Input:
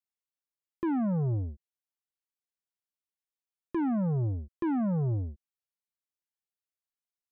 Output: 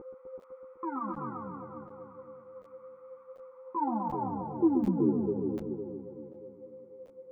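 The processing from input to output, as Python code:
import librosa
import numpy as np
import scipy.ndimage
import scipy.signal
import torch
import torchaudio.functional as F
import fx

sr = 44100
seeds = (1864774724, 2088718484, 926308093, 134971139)

y = fx.quant_dither(x, sr, seeds[0], bits=10, dither='triangular')
y = fx.filter_sweep_bandpass(y, sr, from_hz=1200.0, to_hz=400.0, start_s=3.4, end_s=4.78, q=6.5)
y = y + 10.0 ** (-45.0 / 20.0) * np.sin(2.0 * np.pi * 520.0 * np.arange(len(y)) / sr)
y = scipy.signal.sosfilt(scipy.signal.butter(4, 2000.0, 'lowpass', fs=sr, output='sos'), y)
y = fx.peak_eq(y, sr, hz=330.0, db=11.5, octaves=2.5)
y = fx.notch(y, sr, hz=670.0, q=12.0)
y = y + 0.84 * np.pad(y, (int(0.9 * sr / 1000.0), 0))[:len(y)]
y = fx.echo_heads(y, sr, ms=126, heads='all three', feedback_pct=55, wet_db=-7.5)
y = fx.buffer_crackle(y, sr, first_s=0.4, period_s=0.74, block=1024, kind='zero')
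y = fx.ensemble(y, sr)
y = F.gain(torch.from_numpy(y), 7.5).numpy()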